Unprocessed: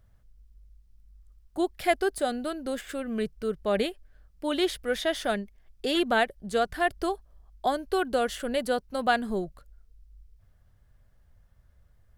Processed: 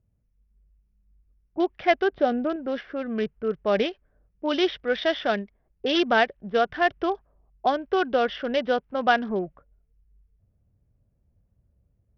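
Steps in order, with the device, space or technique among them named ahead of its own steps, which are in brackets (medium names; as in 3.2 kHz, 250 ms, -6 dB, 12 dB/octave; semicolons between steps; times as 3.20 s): level-controlled noise filter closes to 310 Hz, open at -23.5 dBFS; 2.12–2.56 s: tilt shelf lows +5 dB; Bluetooth headset (high-pass 170 Hz 6 dB/octave; level rider gain up to 4 dB; resampled via 8 kHz; SBC 64 kbps 44.1 kHz)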